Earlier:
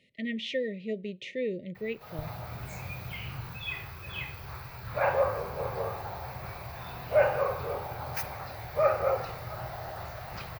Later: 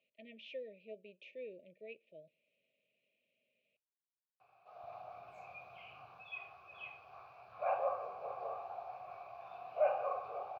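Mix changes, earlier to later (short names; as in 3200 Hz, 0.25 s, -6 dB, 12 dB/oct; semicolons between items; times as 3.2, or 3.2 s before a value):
background: entry +2.65 s; master: add vowel filter a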